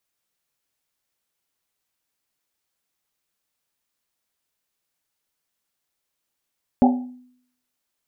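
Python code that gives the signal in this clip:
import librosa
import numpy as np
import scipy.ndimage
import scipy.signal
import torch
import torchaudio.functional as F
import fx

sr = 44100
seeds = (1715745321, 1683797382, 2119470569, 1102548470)

y = fx.risset_drum(sr, seeds[0], length_s=1.1, hz=250.0, decay_s=0.66, noise_hz=780.0, noise_width_hz=140.0, noise_pct=30)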